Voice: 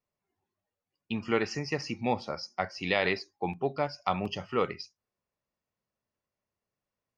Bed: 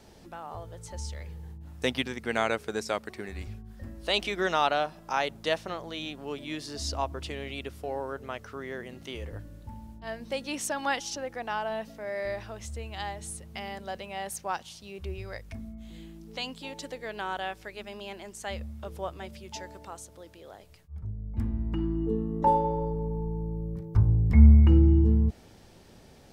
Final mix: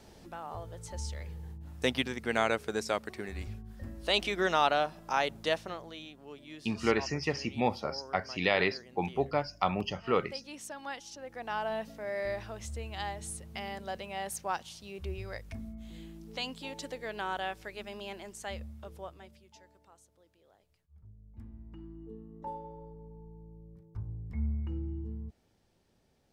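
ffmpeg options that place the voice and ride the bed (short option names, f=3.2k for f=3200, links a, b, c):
-filter_complex "[0:a]adelay=5550,volume=0dB[a];[1:a]volume=9dB,afade=t=out:st=5.4:d=0.69:silence=0.298538,afade=t=in:st=11.16:d=0.49:silence=0.316228,afade=t=out:st=18.11:d=1.4:silence=0.149624[b];[a][b]amix=inputs=2:normalize=0"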